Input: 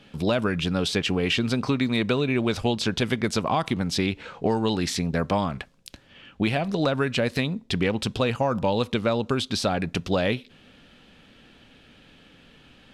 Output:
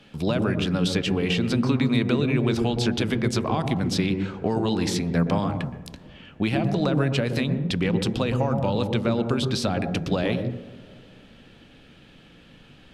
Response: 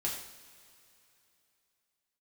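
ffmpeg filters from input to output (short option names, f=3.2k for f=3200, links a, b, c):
-filter_complex "[0:a]acrossover=split=270[a][b];[b]acompressor=threshold=-26dB:ratio=2[c];[a][c]amix=inputs=2:normalize=0,asplit=2[d][e];[e]tiltshelf=f=930:g=8.5[f];[1:a]atrim=start_sample=2205,lowpass=2.2k,adelay=118[g];[f][g]afir=irnorm=-1:irlink=0,volume=-11dB[h];[d][h]amix=inputs=2:normalize=0"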